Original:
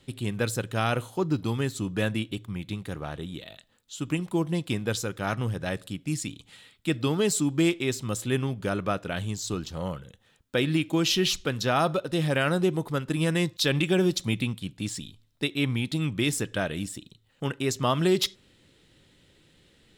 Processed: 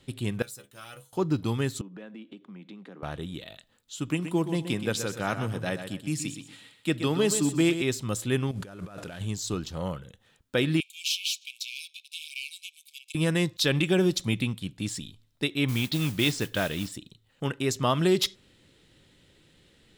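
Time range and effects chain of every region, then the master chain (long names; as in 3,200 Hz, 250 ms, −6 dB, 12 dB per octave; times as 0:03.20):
0:00.42–0:01.13: mu-law and A-law mismatch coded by A + first-order pre-emphasis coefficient 0.8 + stiff-string resonator 67 Hz, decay 0.23 s, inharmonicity 0.002
0:01.81–0:03.03: Butterworth high-pass 180 Hz 48 dB per octave + head-to-tape spacing loss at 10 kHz 26 dB + downward compressor 4 to 1, threshold −42 dBFS
0:04.10–0:07.82: high-pass filter 120 Hz + repeating echo 125 ms, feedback 28%, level −9.5 dB
0:08.51–0:09.21: variable-slope delta modulation 64 kbit/s + compressor whose output falls as the input rises −40 dBFS
0:10.80–0:13.15: gain on one half-wave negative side −7 dB + upward compression, threshold −33 dBFS + linear-phase brick-wall high-pass 2,200 Hz
0:15.68–0:16.92: low-pass with resonance 4,600 Hz, resonance Q 1.8 + noise that follows the level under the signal 15 dB
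whole clip: no processing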